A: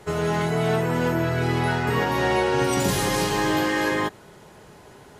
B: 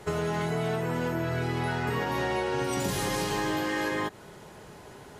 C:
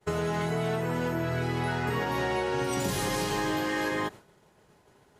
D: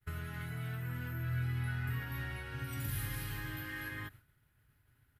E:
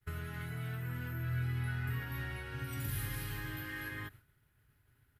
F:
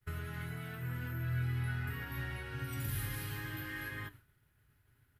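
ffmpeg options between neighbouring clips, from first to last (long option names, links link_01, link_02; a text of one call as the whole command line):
ffmpeg -i in.wav -af "acompressor=threshold=-26dB:ratio=6" out.wav
ffmpeg -i in.wav -af "agate=range=-33dB:threshold=-37dB:ratio=3:detection=peak" out.wav
ffmpeg -i in.wav -af "firequalizer=gain_entry='entry(120,0);entry(180,-20);entry(270,-13);entry(390,-26);entry(970,-23);entry(1400,-8);entry(6600,-22);entry(12000,1)':delay=0.05:min_phase=1" out.wav
ffmpeg -i in.wav -af "equalizer=frequency=400:width=5.3:gain=4" out.wav
ffmpeg -i in.wav -af "flanger=delay=7.9:depth=4.3:regen=-79:speed=0.76:shape=sinusoidal,volume=4.5dB" out.wav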